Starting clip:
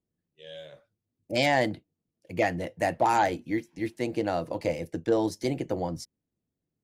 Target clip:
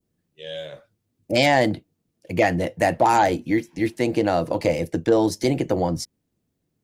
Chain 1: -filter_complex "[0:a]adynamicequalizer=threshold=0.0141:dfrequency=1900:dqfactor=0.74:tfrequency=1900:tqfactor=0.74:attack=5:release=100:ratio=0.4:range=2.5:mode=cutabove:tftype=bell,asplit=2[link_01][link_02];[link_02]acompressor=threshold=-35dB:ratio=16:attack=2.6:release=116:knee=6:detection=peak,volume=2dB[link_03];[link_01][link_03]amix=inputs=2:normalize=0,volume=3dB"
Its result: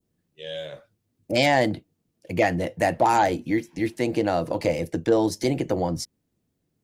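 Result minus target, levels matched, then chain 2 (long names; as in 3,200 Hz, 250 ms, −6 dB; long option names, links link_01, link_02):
downward compressor: peak gain reduction +8.5 dB
-filter_complex "[0:a]adynamicequalizer=threshold=0.0141:dfrequency=1900:dqfactor=0.74:tfrequency=1900:tqfactor=0.74:attack=5:release=100:ratio=0.4:range=2.5:mode=cutabove:tftype=bell,asplit=2[link_01][link_02];[link_02]acompressor=threshold=-26dB:ratio=16:attack=2.6:release=116:knee=6:detection=peak,volume=2dB[link_03];[link_01][link_03]amix=inputs=2:normalize=0,volume=3dB"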